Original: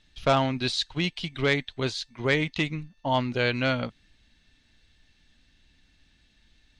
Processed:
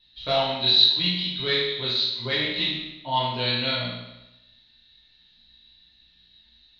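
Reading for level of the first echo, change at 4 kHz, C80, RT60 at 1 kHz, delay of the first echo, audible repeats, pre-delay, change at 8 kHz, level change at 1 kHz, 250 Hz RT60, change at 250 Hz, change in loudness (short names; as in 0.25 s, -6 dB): none, +11.5 dB, 3.5 dB, 0.95 s, none, none, 8 ms, under -10 dB, +0.5 dB, 0.95 s, -4.5 dB, +5.0 dB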